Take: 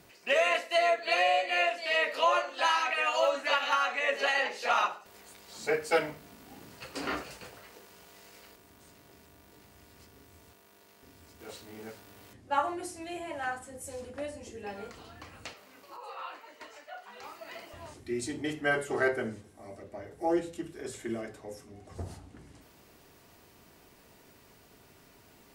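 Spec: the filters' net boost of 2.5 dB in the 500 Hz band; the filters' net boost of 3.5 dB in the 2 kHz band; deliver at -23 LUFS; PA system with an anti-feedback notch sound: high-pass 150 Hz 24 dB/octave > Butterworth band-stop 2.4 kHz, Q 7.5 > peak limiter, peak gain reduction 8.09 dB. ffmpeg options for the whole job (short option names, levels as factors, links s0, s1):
-af "highpass=f=150:w=0.5412,highpass=f=150:w=1.3066,asuperstop=centerf=2400:order=8:qfactor=7.5,equalizer=f=500:t=o:g=3,equalizer=f=2000:t=o:g=5,volume=2.51,alimiter=limit=0.282:level=0:latency=1"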